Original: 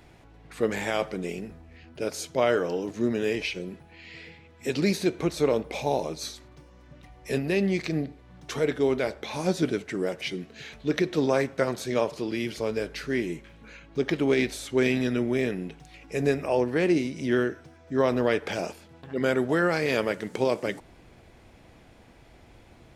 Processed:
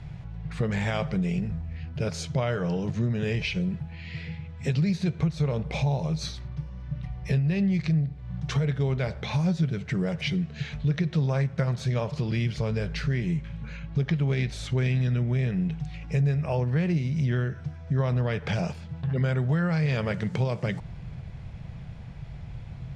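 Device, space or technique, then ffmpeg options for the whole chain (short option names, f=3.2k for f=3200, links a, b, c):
jukebox: -filter_complex "[0:a]lowpass=5.7k,lowshelf=f=210:t=q:w=3:g=11.5,acompressor=threshold=-26dB:ratio=4,asettb=1/sr,asplit=3[a][b][c];[a]atrim=end=6.264[d];[b]atrim=start=6.26:end=7.53,asetpts=PTS-STARTPTS,afade=t=in:d=0.004:c=qsin,afade=t=out:st=1.266:d=0.004:c=qsin,equalizer=f=7.3k:t=o:w=0.34:g=-6[e];[c]atrim=start=7.526[f];[d][e]acrossfade=d=0.004:c1=hsin:c2=qsin[g];[g][f]acrossfade=d=0.004:c1=qsin:c2=hsin,volume=2.5dB"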